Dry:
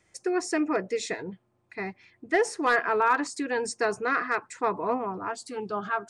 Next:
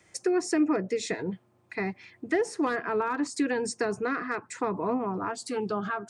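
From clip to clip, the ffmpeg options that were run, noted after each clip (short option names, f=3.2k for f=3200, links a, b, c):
-filter_complex "[0:a]highpass=73,acrossover=split=320[a][b];[b]acompressor=threshold=-36dB:ratio=5[c];[a][c]amix=inputs=2:normalize=0,volume=6dB"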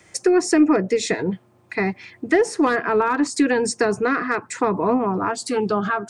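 -af "aeval=exprs='0.188*(cos(1*acos(clip(val(0)/0.188,-1,1)))-cos(1*PI/2))+0.00133*(cos(4*acos(clip(val(0)/0.188,-1,1)))-cos(4*PI/2))':c=same,volume=9dB"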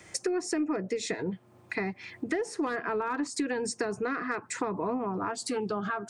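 -af "acompressor=threshold=-32dB:ratio=3"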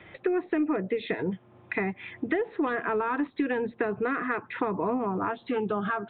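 -af "aresample=8000,aresample=44100,volume=3dB"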